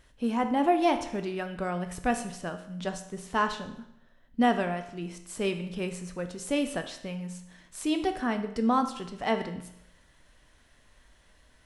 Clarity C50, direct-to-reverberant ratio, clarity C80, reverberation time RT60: 10.5 dB, 6.5 dB, 13.0 dB, 0.80 s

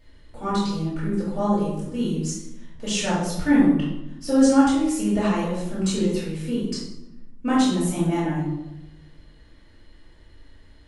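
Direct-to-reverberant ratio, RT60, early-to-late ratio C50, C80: −8.5 dB, 0.95 s, 0.5 dB, 4.5 dB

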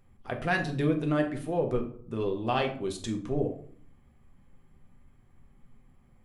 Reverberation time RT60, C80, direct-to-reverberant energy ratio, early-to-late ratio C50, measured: 0.55 s, 14.5 dB, 2.5 dB, 10.0 dB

